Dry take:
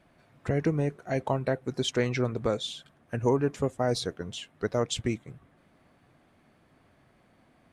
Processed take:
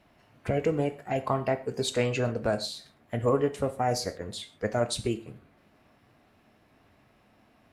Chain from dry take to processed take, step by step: formant shift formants +3 st; gated-style reverb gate 160 ms falling, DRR 9 dB

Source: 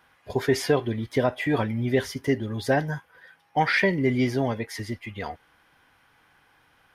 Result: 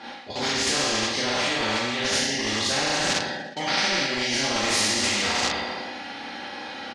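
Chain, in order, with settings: spectral sustain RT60 1.04 s; Schroeder reverb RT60 0.42 s, combs from 29 ms, DRR -6.5 dB; spectral noise reduction 10 dB; in parallel at -9 dB: bit crusher 5-bit; on the sum: cabinet simulation 150–6400 Hz, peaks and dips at 240 Hz +5 dB, 380 Hz +5 dB, 780 Hz +7 dB, 1.5 kHz -6 dB, 4.2 kHz +8 dB; band-stop 1.1 kHz, Q 5.6; reverse; compression 10:1, threshold -25 dBFS, peak gain reduction 24.5 dB; reverse; comb 3.6 ms, depth 55%; feedback delay 120 ms, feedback 52%, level -23.5 dB; spectrum-flattening compressor 4:1; trim +5 dB

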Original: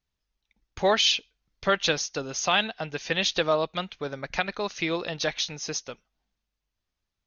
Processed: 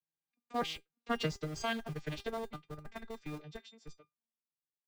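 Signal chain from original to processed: vocoder on a broken chord bare fifth, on D#3, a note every 472 ms; Doppler pass-by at 1.85 s, 12 m/s, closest 11 m; in parallel at -5 dB: Schmitt trigger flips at -32.5 dBFS; on the sum: feedback comb 400 Hz, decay 0.19 s, harmonics all, mix 80%; time stretch by phase-locked vocoder 0.67×; trim +3 dB

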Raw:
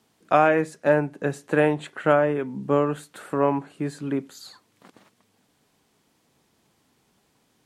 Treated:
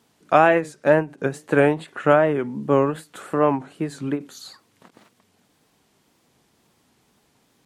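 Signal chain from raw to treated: wow and flutter 110 cents; endings held to a fixed fall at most 230 dB/s; trim +3 dB

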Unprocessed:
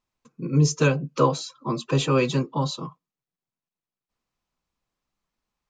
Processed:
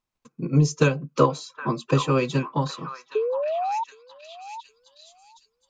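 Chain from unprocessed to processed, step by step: painted sound rise, 3.15–3.84 s, 420–940 Hz -23 dBFS; transient shaper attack +6 dB, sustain -2 dB; repeats whose band climbs or falls 767 ms, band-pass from 1.3 kHz, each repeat 0.7 oct, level -6.5 dB; trim -2.5 dB

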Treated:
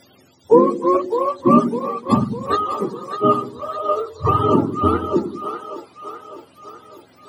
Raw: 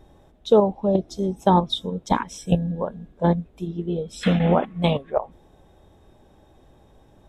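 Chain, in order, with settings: spectrum inverted on a logarithmic axis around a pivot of 460 Hz; two-band feedback delay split 410 Hz, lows 93 ms, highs 603 ms, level -8.5 dB; trim +5.5 dB

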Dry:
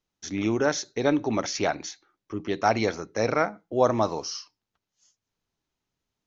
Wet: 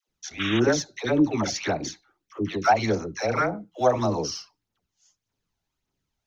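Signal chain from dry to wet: phaser 1.7 Hz, delay 1.5 ms, feedback 48%; phase dispersion lows, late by 85 ms, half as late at 640 Hz; painted sound noise, 0.39–0.60 s, 1.1–3.8 kHz -30 dBFS

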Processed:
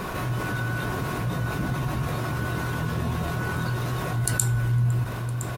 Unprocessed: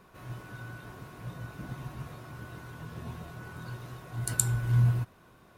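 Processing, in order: feedback delay 507 ms, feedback 51%, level -24 dB; level flattener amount 70%

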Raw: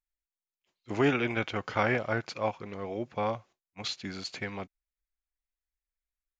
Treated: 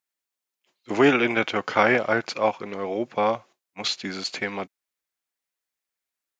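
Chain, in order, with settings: high-pass 210 Hz 12 dB/octave; trim +8.5 dB

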